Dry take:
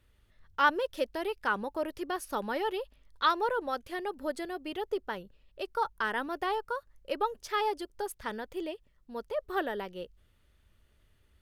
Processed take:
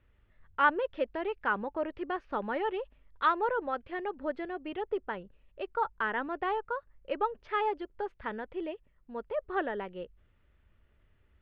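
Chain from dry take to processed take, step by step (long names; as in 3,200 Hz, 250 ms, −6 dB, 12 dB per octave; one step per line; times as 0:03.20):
low-pass filter 2,700 Hz 24 dB per octave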